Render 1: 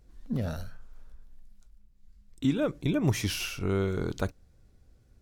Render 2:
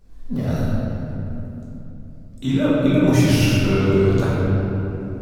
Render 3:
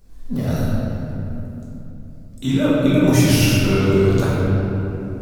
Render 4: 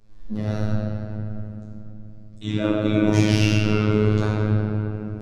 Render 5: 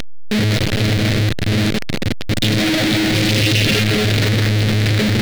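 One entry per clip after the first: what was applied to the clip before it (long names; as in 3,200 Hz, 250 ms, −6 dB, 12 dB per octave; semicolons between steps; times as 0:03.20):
rectangular room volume 190 cubic metres, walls hard, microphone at 1.2 metres; level +2 dB
high-shelf EQ 6,000 Hz +8.5 dB; level +1 dB
low-pass filter 4,900 Hz 12 dB per octave; phases set to zero 106 Hz; level −1.5 dB
sign of each sample alone; graphic EQ with 10 bands 125 Hz +7 dB, 250 Hz +4 dB, 500 Hz +4 dB, 1,000 Hz −9 dB, 2,000 Hz +9 dB, 4,000 Hz +11 dB; level +1.5 dB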